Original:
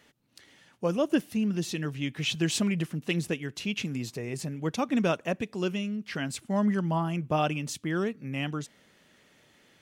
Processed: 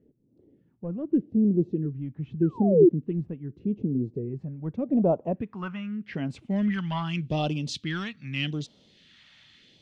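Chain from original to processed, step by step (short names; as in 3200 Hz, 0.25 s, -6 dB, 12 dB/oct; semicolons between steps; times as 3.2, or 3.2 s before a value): painted sound fall, 2.42–2.89, 320–1600 Hz -22 dBFS; in parallel at -8 dB: hard clip -25 dBFS, distortion -9 dB; on the sum: low-pass sweep 400 Hz -> 3900 Hz, 4.31–7.11; phaser stages 2, 0.83 Hz, lowest notch 390–1800 Hz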